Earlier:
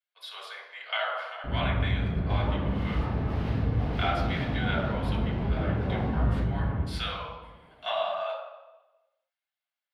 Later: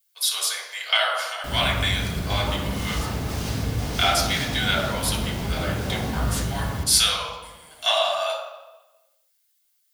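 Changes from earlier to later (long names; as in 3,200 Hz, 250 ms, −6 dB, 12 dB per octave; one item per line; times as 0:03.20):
speech +4.0 dB
first sound: remove high-frequency loss of the air 500 metres
master: remove high-frequency loss of the air 470 metres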